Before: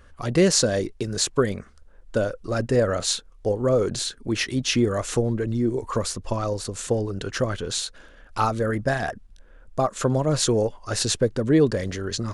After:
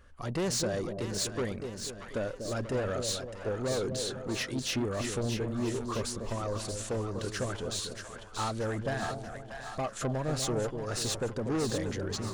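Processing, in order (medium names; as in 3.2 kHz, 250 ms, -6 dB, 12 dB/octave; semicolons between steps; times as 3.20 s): saturation -21 dBFS, distortion -10 dB; two-band feedback delay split 740 Hz, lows 243 ms, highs 633 ms, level -6.5 dB; trim -6.5 dB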